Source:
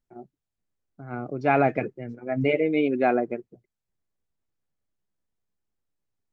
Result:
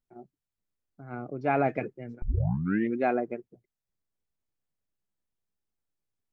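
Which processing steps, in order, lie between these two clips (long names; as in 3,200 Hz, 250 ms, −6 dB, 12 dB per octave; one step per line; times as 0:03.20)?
0:01.22–0:01.66: high-shelf EQ 3,500 Hz −9 dB
0:02.22: tape start 0.77 s
level −4.5 dB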